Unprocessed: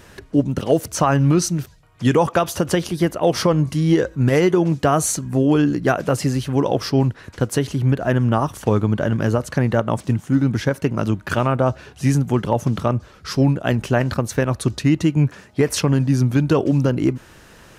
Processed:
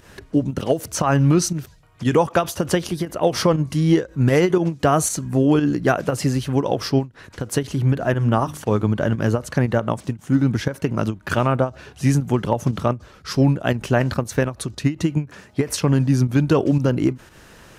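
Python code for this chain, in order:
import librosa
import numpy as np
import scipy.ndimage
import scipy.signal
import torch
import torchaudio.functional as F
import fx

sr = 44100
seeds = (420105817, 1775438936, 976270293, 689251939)

y = fx.hum_notches(x, sr, base_hz=50, count=6, at=(7.75, 8.86))
y = fx.volume_shaper(y, sr, bpm=118, per_beat=1, depth_db=-9, release_ms=124.0, shape='fast start')
y = fx.end_taper(y, sr, db_per_s=260.0)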